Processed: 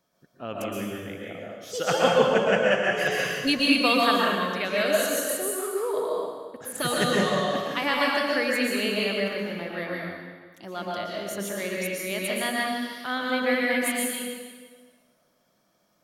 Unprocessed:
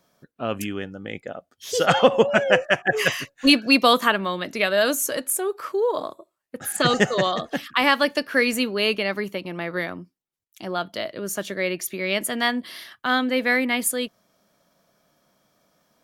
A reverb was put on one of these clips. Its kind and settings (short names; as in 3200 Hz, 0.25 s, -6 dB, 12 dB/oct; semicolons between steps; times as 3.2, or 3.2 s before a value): plate-style reverb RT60 1.5 s, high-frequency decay 0.9×, pre-delay 0.105 s, DRR -4 dB; gain -8.5 dB